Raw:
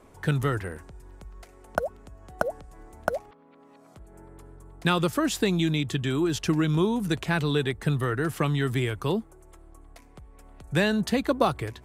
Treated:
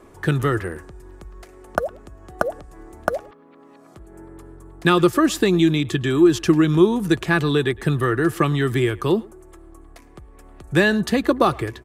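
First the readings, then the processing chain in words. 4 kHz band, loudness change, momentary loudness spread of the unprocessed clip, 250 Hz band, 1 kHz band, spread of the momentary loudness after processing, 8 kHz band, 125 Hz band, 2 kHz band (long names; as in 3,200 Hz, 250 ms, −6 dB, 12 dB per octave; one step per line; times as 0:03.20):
+4.0 dB, +7.0 dB, 8 LU, +8.0 dB, +6.5 dB, 11 LU, +4.0 dB, +4.0 dB, +7.0 dB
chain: hollow resonant body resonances 350/1,200/1,700 Hz, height 9 dB
far-end echo of a speakerphone 110 ms, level −22 dB
level +4 dB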